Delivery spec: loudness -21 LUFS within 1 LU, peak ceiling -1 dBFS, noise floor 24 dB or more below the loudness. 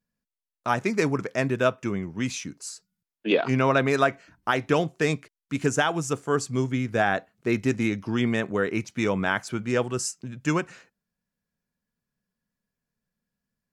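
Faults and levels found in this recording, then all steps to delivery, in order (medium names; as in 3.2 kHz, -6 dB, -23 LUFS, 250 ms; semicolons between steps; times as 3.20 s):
loudness -26.0 LUFS; peak level -9.0 dBFS; loudness target -21.0 LUFS
-> trim +5 dB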